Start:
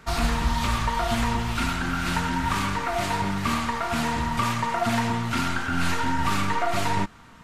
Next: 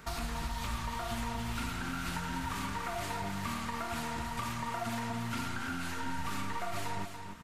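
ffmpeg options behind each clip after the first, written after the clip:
-filter_complex "[0:a]highshelf=f=9.6k:g=9,acompressor=threshold=-35dB:ratio=3,asplit=2[a][b];[b]aecho=0:1:287:0.422[c];[a][c]amix=inputs=2:normalize=0,volume=-2.5dB"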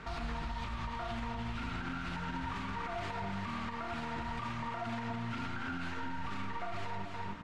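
-af "lowpass=3.4k,bandreject=f=73.25:t=h:w=4,bandreject=f=146.5:t=h:w=4,bandreject=f=219.75:t=h:w=4,bandreject=f=293:t=h:w=4,bandreject=f=366.25:t=h:w=4,bandreject=f=439.5:t=h:w=4,bandreject=f=512.75:t=h:w=4,bandreject=f=586:t=h:w=4,bandreject=f=659.25:t=h:w=4,bandreject=f=732.5:t=h:w=4,bandreject=f=805.75:t=h:w=4,bandreject=f=879:t=h:w=4,bandreject=f=952.25:t=h:w=4,bandreject=f=1.0255k:t=h:w=4,bandreject=f=1.09875k:t=h:w=4,bandreject=f=1.172k:t=h:w=4,bandreject=f=1.24525k:t=h:w=4,bandreject=f=1.3185k:t=h:w=4,bandreject=f=1.39175k:t=h:w=4,bandreject=f=1.465k:t=h:w=4,bandreject=f=1.53825k:t=h:w=4,bandreject=f=1.6115k:t=h:w=4,bandreject=f=1.68475k:t=h:w=4,bandreject=f=1.758k:t=h:w=4,bandreject=f=1.83125k:t=h:w=4,bandreject=f=1.9045k:t=h:w=4,bandreject=f=1.97775k:t=h:w=4,bandreject=f=2.051k:t=h:w=4,bandreject=f=2.12425k:t=h:w=4,alimiter=level_in=10.5dB:limit=-24dB:level=0:latency=1:release=165,volume=-10.5dB,volume=5dB"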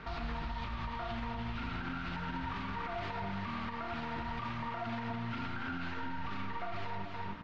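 -af "lowpass=f=5.1k:w=0.5412,lowpass=f=5.1k:w=1.3066"

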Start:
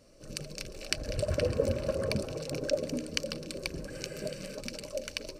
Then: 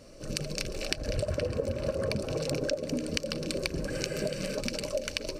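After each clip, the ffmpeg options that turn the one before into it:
-af "highshelf=f=8k:g=-4,acompressor=threshold=-35dB:ratio=12,volume=8.5dB"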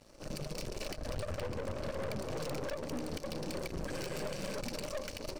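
-af "aeval=exprs='(tanh(63.1*val(0)+0.8)-tanh(0.8))/63.1':c=same,aeval=exprs='sgn(val(0))*max(abs(val(0))-0.00106,0)':c=same,volume=1.5dB"

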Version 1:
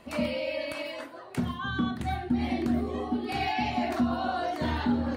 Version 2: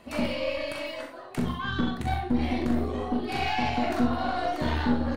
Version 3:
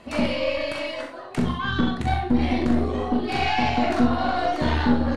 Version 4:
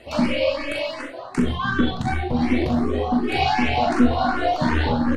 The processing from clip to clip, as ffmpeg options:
-filter_complex "[0:a]aeval=exprs='0.168*(cos(1*acos(clip(val(0)/0.168,-1,1)))-cos(1*PI/2))+0.0237*(cos(4*acos(clip(val(0)/0.168,-1,1)))-cos(4*PI/2))':c=same,asplit=2[a][b];[b]aecho=0:1:41|64:0.473|0.398[c];[a][c]amix=inputs=2:normalize=0"
-af "lowpass=8.5k,volume=5dB"
-filter_complex "[0:a]asplit=2[a][b];[b]afreqshift=2.7[c];[a][c]amix=inputs=2:normalize=1,volume=5dB"

